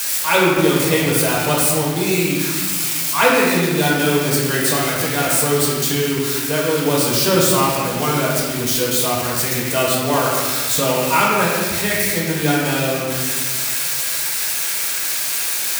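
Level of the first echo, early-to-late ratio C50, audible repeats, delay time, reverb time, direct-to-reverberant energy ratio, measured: none, -0.5 dB, none, none, 1.6 s, -5.0 dB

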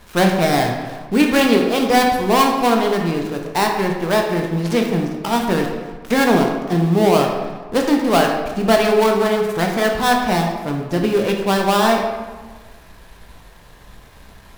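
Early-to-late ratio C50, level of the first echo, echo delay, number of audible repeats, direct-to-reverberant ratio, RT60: 4.0 dB, none, none, none, 1.0 dB, 1.4 s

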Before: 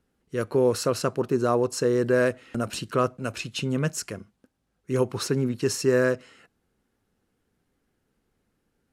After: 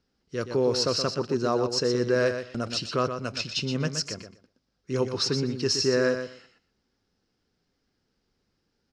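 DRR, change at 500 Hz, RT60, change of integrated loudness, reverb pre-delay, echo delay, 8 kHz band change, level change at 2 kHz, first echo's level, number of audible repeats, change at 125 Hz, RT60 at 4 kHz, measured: none, -2.0 dB, none, -1.0 dB, none, 0.122 s, -0.5 dB, -1.5 dB, -8.0 dB, 2, -2.5 dB, none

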